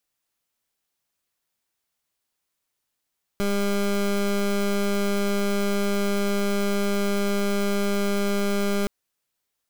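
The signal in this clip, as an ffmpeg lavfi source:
-f lavfi -i "aevalsrc='0.0708*(2*lt(mod(201*t,1),0.22)-1)':d=5.47:s=44100"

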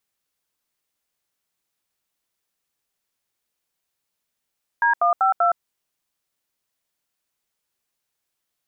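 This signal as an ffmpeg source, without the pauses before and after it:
-f lavfi -i "aevalsrc='0.133*clip(min(mod(t,0.194),0.116-mod(t,0.194))/0.002,0,1)*(eq(floor(t/0.194),0)*(sin(2*PI*941*mod(t,0.194))+sin(2*PI*1633*mod(t,0.194)))+eq(floor(t/0.194),1)*(sin(2*PI*697*mod(t,0.194))+sin(2*PI*1209*mod(t,0.194)))+eq(floor(t/0.194),2)*(sin(2*PI*770*mod(t,0.194))+sin(2*PI*1336*mod(t,0.194)))+eq(floor(t/0.194),3)*(sin(2*PI*697*mod(t,0.194))+sin(2*PI*1336*mod(t,0.194))))':d=0.776:s=44100"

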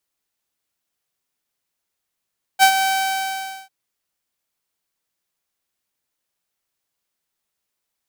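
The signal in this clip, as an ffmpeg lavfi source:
-f lavfi -i "aevalsrc='0.562*(2*mod(770*t,1)-1)':d=1.096:s=44100,afade=t=in:d=0.04,afade=t=out:st=0.04:d=0.081:silence=0.355,afade=t=out:st=0.24:d=0.856"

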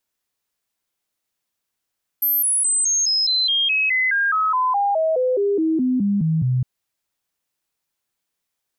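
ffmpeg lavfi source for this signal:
-f lavfi -i "aevalsrc='0.158*clip(min(mod(t,0.21),0.21-mod(t,0.21))/0.005,0,1)*sin(2*PI*12900*pow(2,-floor(t/0.21)/3)*mod(t,0.21))':d=4.41:s=44100"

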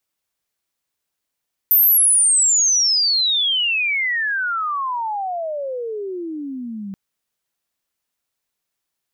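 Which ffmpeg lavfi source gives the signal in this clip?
-f lavfi -i "aevalsrc='pow(10,(-10-17*t/5.23)/20)*sin(2*PI*14000*5.23/log(190/14000)*(exp(log(190/14000)*t/5.23)-1))':d=5.23:s=44100"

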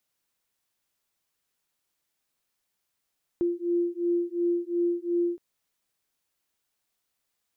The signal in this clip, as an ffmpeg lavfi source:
-f lavfi -i "aevalsrc='0.0447*(sin(2*PI*345*t)+sin(2*PI*347.8*t))':d=1.97:s=44100"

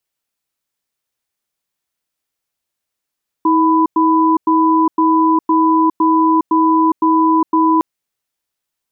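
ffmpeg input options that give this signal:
-f lavfi -i "aevalsrc='0.251*(sin(2*PI*320*t)+sin(2*PI*996*t))*clip(min(mod(t,0.51),0.41-mod(t,0.51))/0.005,0,1)':d=4.36:s=44100"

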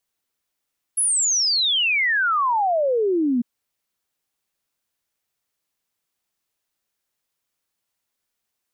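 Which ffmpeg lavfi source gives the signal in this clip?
-f lavfi -i "aevalsrc='0.141*clip(min(t,2.45-t)/0.01,0,1)*sin(2*PI*11000*2.45/log(230/11000)*(exp(log(230/11000)*t/2.45)-1))':d=2.45:s=44100"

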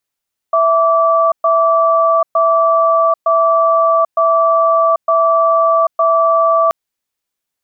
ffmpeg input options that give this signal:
-f lavfi -i "aevalsrc='0.266*(sin(2*PI*659*t)+sin(2*PI*1160*t))*clip(min(mod(t,0.91),0.79-mod(t,0.91))/0.005,0,1)':d=6.18:s=44100"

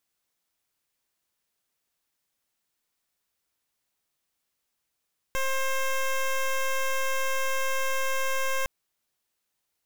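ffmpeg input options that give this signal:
-f lavfi -i "aevalsrc='0.0501*(2*lt(mod(531*t,1),0.12)-1)':d=3.31:s=44100"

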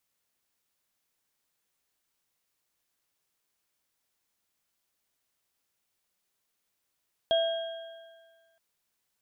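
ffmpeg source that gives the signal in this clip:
-f lavfi -i "aevalsrc='0.0891*pow(10,-3*t/1.59)*sin(2*PI*662*t)+0.00944*pow(10,-3*t/2.34)*sin(2*PI*1600*t)+0.0447*pow(10,-3*t/1.4)*sin(2*PI*3270*t)':d=1.27:s=44100"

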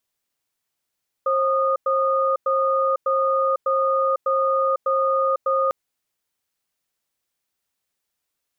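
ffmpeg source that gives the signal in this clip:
-f lavfi -i "aevalsrc='0.1*(sin(2*PI*535*t)+sin(2*PI*1230*t))*clip(min(mod(t,0.6),0.5-mod(t,0.6))/0.005,0,1)':d=4.45:s=44100"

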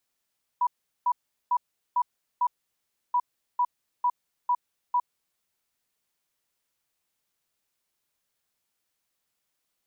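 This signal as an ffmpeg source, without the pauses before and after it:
-f lavfi -i "aevalsrc='0.1*sin(2*PI*979*t)*clip(min(mod(mod(t,2.53),0.45),0.06-mod(mod(t,2.53),0.45))/0.005,0,1)*lt(mod(t,2.53),2.25)':d=5.06:s=44100"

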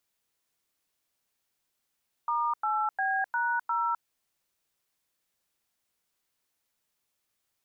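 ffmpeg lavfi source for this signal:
-f lavfi -i "aevalsrc='0.0398*clip(min(mod(t,0.353),0.257-mod(t,0.353))/0.002,0,1)*(eq(floor(t/0.353),0)*(sin(2*PI*941*mod(t,0.353))+sin(2*PI*1209*mod(t,0.353)))+eq(floor(t/0.353),1)*(sin(2*PI*852*mod(t,0.353))+sin(2*PI*1336*mod(t,0.353)))+eq(floor(t/0.353),2)*(sin(2*PI*770*mod(t,0.353))+sin(2*PI*1633*mod(t,0.353)))+eq(floor(t/0.353),3)*(sin(2*PI*941*mod(t,0.353))+sin(2*PI*1477*mod(t,0.353)))+eq(floor(t/0.353),4)*(sin(2*PI*941*mod(t,0.353))+sin(2*PI*1336*mod(t,0.353))))':d=1.765:s=44100"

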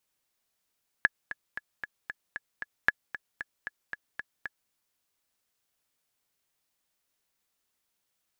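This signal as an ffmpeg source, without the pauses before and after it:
-f lavfi -i "aevalsrc='pow(10,(-7.5-14.5*gte(mod(t,7*60/229),60/229))/20)*sin(2*PI*1700*mod(t,60/229))*exp(-6.91*mod(t,60/229)/0.03)':d=3.66:s=44100"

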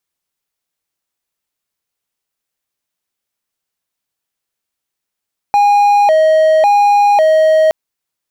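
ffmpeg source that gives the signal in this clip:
-f lavfi -i "aevalsrc='0.596*(1-4*abs(mod((724*t+94/0.91*(0.5-abs(mod(0.91*t,1)-0.5)))+0.25,1)-0.5))':d=2.17:s=44100"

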